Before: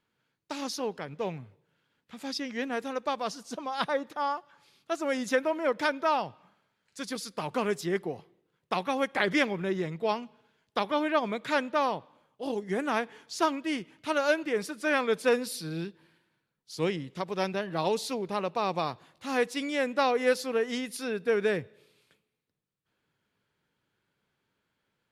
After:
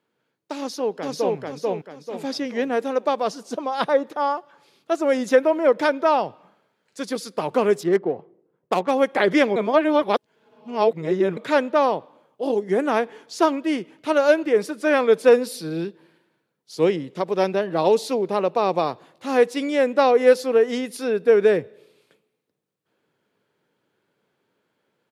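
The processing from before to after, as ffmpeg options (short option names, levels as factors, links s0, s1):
-filter_complex "[0:a]asplit=2[s0][s1];[s1]afade=t=in:st=0.58:d=0.01,afade=t=out:st=1.37:d=0.01,aecho=0:1:440|880|1320|1760|2200:0.841395|0.294488|0.103071|0.0360748|0.0126262[s2];[s0][s2]amix=inputs=2:normalize=0,asettb=1/sr,asplit=3[s3][s4][s5];[s3]atrim=end=7.834[s6];[s4]atrim=start=7.83:end=8.91,asetpts=PTS-STARTPTS,afade=t=in:d=0.004:c=qsin,afade=t=out:st=1.076:d=0.004:c=qsin,adynamicsmooth=sensitivity=7:basefreq=1300[s7];[s5]atrim=start=8.906[s8];[s6][s7]acrossfade=d=0.004:c1=hsin:c2=qsin[s9];[s9][s8]acrossfade=d=0.004:c1=qsin:c2=hsin,asplit=3[s10][s11][s12];[s10]atrim=end=9.562[s13];[s11]atrim=start=9.558:end=11.372,asetpts=PTS-STARTPTS,areverse[s14];[s12]atrim=start=11.368[s15];[s13][s14]acrossfade=d=0.004:c1=hsin:c2=hsin[s16];[s16][s15]acrossfade=d=0.004:c1=hsin:c2=hsin,highpass=120,equalizer=f=460:w=0.7:g=9,dynaudnorm=f=450:g=7:m=1.41"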